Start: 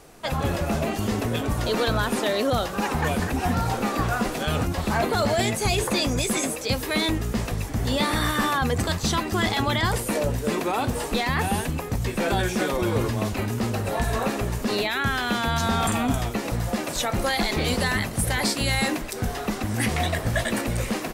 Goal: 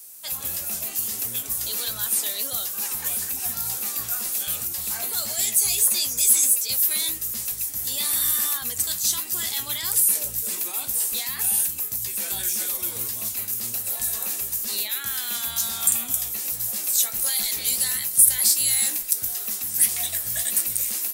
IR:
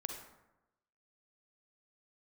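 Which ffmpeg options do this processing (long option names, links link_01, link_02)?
-af "crystalizer=i=8.5:c=0,flanger=delay=8.3:depth=9:regen=65:speed=1.5:shape=sinusoidal,aemphasis=mode=production:type=75fm,volume=-16dB"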